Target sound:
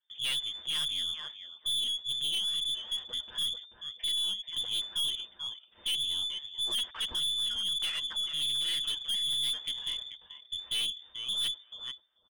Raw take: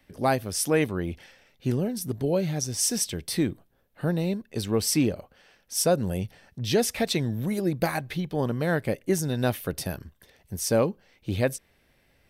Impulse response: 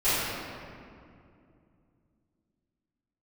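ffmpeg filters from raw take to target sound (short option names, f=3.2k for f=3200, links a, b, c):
-filter_complex "[0:a]bandreject=f=50:t=h:w=6,bandreject=f=100:t=h:w=6,bandreject=f=150:t=h:w=6,agate=range=-21dB:threshold=-51dB:ratio=16:detection=peak,lowshelf=f=390:g=11,aecho=1:1:7.4:0.63,lowpass=f=3.1k:t=q:w=0.5098,lowpass=f=3.1k:t=q:w=0.6013,lowpass=f=3.1k:t=q:w=0.9,lowpass=f=3.1k:t=q:w=2.563,afreqshift=-3600,asplit=2[a][b];[b]adelay=436,lowpass=f=940:p=1,volume=-5dB,asplit=2[c][d];[d]adelay=436,lowpass=f=940:p=1,volume=0.16,asplit=2[e][f];[f]adelay=436,lowpass=f=940:p=1,volume=0.16[g];[c][e][g]amix=inputs=3:normalize=0[h];[a][h]amix=inputs=2:normalize=0,aeval=exprs='(tanh(10*val(0)+0.2)-tanh(0.2))/10':c=same,volume=-8.5dB"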